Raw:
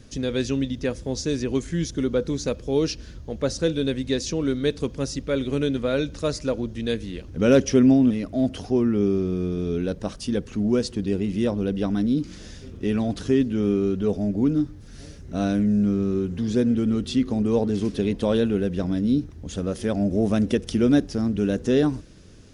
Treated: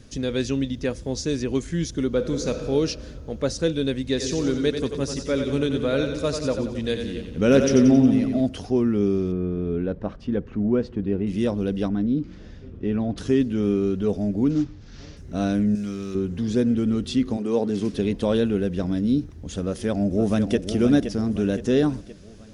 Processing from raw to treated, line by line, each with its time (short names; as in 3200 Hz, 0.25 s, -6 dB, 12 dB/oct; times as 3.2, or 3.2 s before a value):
2.09–2.68 reverb throw, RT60 2.4 s, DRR 5.5 dB
4.08–8.41 split-band echo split 400 Hz, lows 0.134 s, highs 90 ms, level -6.5 dB
9.32–11.27 LPF 1800 Hz
11.88–13.18 tape spacing loss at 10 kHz 28 dB
14.5–15.17 CVSD 32 kbps
15.75–16.15 tilt shelf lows -9 dB, about 1300 Hz
17.36–17.92 HPF 340 Hz -> 85 Hz
19.65–20.56 echo throw 0.52 s, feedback 50%, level -8.5 dB